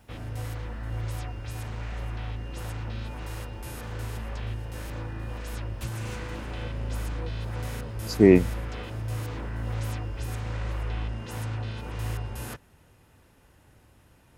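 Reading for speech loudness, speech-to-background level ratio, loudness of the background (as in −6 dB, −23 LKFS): −19.0 LKFS, 16.0 dB, −35.0 LKFS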